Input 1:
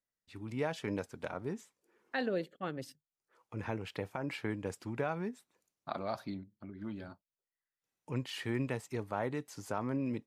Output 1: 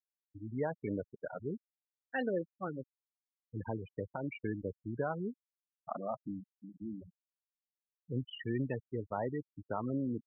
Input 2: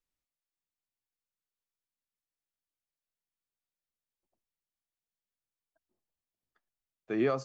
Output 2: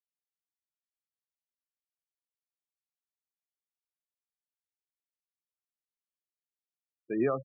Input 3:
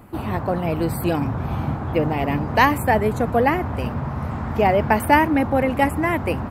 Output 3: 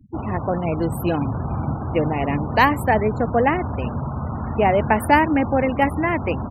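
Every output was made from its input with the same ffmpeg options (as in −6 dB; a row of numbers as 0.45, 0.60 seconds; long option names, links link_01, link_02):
-af "afftfilt=real='re*gte(hypot(re,im),0.0316)':imag='im*gte(hypot(re,im),0.0316)':win_size=1024:overlap=0.75"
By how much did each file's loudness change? −1.0, 0.0, 0.0 LU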